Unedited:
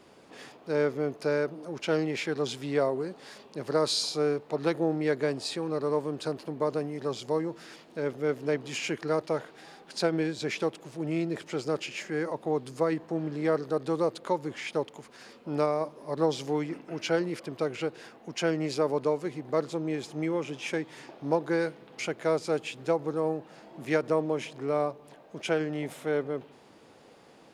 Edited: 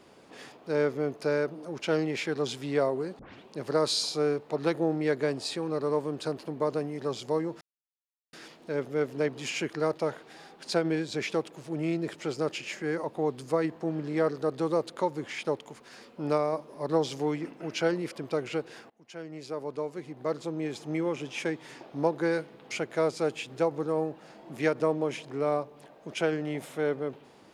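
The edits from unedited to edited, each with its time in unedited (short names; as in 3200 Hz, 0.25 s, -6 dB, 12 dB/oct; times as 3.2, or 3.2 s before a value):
3.19 tape start 0.29 s
7.61 insert silence 0.72 s
18.18–20.24 fade in, from -23.5 dB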